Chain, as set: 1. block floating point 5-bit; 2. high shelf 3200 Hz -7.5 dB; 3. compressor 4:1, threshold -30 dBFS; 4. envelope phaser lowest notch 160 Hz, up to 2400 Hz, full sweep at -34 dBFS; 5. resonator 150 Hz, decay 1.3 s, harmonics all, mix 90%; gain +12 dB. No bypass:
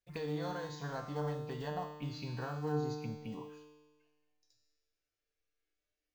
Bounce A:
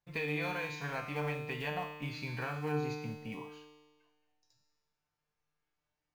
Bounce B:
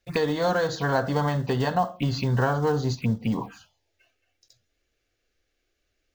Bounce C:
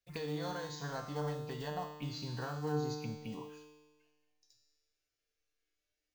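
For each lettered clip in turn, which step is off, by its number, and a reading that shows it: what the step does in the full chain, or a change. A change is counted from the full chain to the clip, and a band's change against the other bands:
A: 4, 2 kHz band +9.5 dB; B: 5, 2 kHz band +2.5 dB; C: 2, 8 kHz band +6.0 dB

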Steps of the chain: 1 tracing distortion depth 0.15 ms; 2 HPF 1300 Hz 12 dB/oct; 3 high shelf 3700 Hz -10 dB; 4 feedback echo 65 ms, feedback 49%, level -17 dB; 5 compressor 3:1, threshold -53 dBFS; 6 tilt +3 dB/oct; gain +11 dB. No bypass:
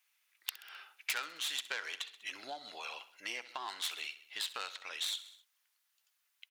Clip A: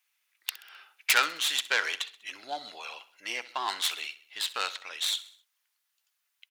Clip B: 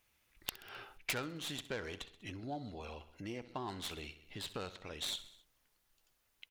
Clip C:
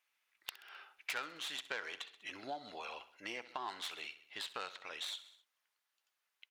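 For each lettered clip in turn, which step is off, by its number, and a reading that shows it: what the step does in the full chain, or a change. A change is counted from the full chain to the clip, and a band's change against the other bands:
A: 5, mean gain reduction 6.0 dB; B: 2, 250 Hz band +20.0 dB; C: 6, 8 kHz band -8.5 dB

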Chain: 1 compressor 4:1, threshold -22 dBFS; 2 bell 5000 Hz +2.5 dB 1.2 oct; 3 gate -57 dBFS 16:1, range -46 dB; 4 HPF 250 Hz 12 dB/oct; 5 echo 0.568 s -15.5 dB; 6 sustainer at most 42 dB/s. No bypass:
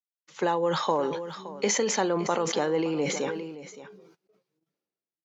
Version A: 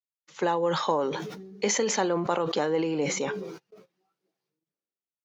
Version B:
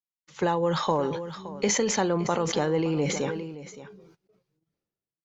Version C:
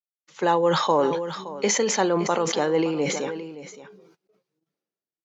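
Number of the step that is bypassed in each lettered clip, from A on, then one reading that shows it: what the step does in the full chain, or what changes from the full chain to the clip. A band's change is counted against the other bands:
5, momentary loudness spread change -4 LU; 4, 125 Hz band +6.5 dB; 1, mean gain reduction 2.5 dB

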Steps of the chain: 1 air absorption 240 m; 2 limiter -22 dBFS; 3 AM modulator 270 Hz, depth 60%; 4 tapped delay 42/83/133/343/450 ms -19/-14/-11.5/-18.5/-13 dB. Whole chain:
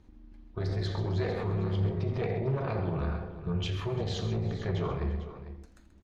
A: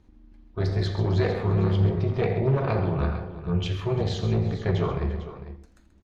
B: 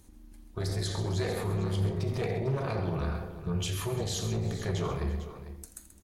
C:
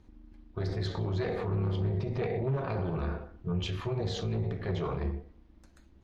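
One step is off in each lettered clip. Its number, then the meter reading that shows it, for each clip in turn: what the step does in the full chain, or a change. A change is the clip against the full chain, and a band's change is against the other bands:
2, mean gain reduction 4.0 dB; 1, 4 kHz band +3.5 dB; 4, echo-to-direct -7.5 dB to none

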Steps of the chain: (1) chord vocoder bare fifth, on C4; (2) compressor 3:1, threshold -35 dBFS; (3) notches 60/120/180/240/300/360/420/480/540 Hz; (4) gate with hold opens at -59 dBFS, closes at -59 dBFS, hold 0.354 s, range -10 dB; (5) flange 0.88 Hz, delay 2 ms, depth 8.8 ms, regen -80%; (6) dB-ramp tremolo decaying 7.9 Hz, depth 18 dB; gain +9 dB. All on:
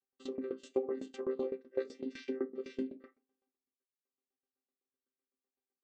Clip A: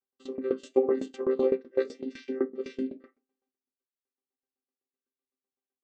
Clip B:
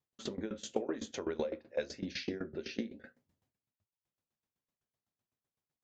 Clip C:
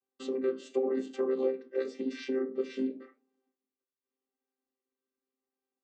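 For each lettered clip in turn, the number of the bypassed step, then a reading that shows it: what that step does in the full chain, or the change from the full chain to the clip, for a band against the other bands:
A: 2, mean gain reduction 6.5 dB; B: 1, 500 Hz band -9.0 dB; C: 6, crest factor change -4.0 dB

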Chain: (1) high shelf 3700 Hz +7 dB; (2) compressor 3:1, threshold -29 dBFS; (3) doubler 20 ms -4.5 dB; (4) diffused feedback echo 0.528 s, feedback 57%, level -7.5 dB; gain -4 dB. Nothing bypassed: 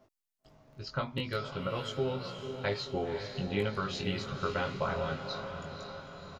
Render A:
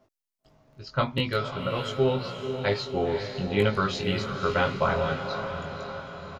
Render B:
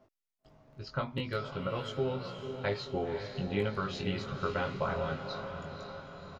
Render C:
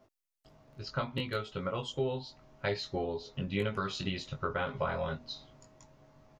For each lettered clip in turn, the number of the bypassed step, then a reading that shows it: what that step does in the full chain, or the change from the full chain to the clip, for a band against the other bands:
2, mean gain reduction 4.5 dB; 1, 4 kHz band -3.0 dB; 4, echo-to-direct -6.0 dB to none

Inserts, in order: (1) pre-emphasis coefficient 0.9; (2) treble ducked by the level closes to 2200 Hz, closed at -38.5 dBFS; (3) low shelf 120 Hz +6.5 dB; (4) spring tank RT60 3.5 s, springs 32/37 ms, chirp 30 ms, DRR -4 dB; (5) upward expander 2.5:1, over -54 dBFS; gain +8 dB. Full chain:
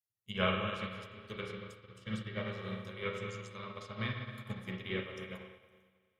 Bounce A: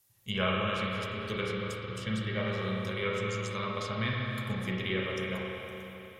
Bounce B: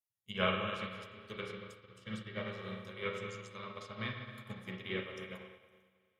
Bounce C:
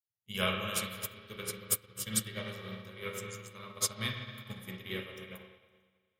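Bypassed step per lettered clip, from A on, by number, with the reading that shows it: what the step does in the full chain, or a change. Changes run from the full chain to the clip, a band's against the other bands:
5, 8 kHz band +4.5 dB; 3, 125 Hz band -3.5 dB; 2, 8 kHz band +27.0 dB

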